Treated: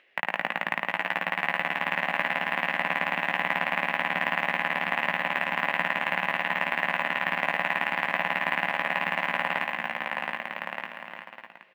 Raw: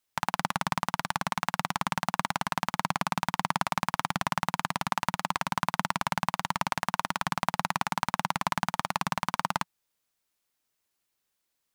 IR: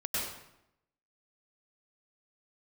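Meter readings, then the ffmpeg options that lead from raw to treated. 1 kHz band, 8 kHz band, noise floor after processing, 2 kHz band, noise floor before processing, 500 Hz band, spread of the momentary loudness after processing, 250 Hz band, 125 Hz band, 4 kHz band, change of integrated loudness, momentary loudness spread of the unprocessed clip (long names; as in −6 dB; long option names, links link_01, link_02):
−0.5 dB, below −15 dB, −47 dBFS, +9.0 dB, −81 dBFS, +5.5 dB, 6 LU, −3.0 dB, −7.0 dB, +1.0 dB, +3.5 dB, 2 LU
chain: -filter_complex "[0:a]highpass=330,equalizer=frequency=370:width_type=q:width=4:gain=3,equalizer=frequency=550:width_type=q:width=4:gain=6,equalizer=frequency=930:width_type=q:width=4:gain=-7,equalizer=frequency=1300:width_type=q:width=4:gain=-8,equalizer=frequency=1900:width_type=q:width=4:gain=10,equalizer=frequency=2700:width_type=q:width=4:gain=8,lowpass=frequency=2700:width=0.5412,lowpass=frequency=2700:width=1.3066,asplit=2[link_01][link_02];[link_02]adelay=17,volume=-6dB[link_03];[link_01][link_03]amix=inputs=2:normalize=0,asplit=2[link_04][link_05];[1:a]atrim=start_sample=2205,highshelf=frequency=4000:gain=-6.5[link_06];[link_05][link_06]afir=irnorm=-1:irlink=0,volume=-18dB[link_07];[link_04][link_07]amix=inputs=2:normalize=0,acompressor=mode=upward:threshold=-47dB:ratio=2.5,asplit=2[link_08][link_09];[link_09]aecho=0:1:720|1224|1577|1824|1997:0.631|0.398|0.251|0.158|0.1[link_10];[link_08][link_10]amix=inputs=2:normalize=0,acrusher=bits=8:mode=log:mix=0:aa=0.000001"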